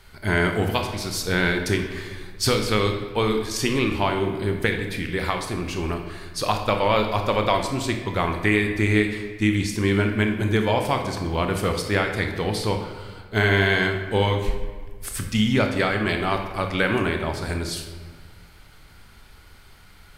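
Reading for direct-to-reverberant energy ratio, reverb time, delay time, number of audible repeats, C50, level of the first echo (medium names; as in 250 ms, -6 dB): 4.0 dB, 1.6 s, no echo, no echo, 6.0 dB, no echo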